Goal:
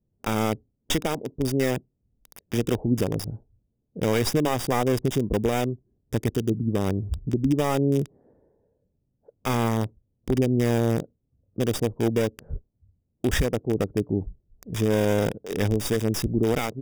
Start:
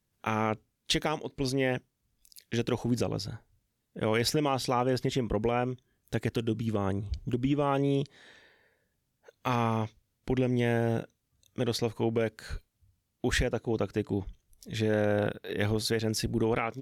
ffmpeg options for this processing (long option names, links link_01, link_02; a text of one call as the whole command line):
ffmpeg -i in.wav -filter_complex "[0:a]acrossover=split=640[link_01][link_02];[link_02]acrusher=bits=3:dc=4:mix=0:aa=0.000001[link_03];[link_01][link_03]amix=inputs=2:normalize=0,asuperstop=centerf=4200:order=12:qfactor=6,volume=6dB" out.wav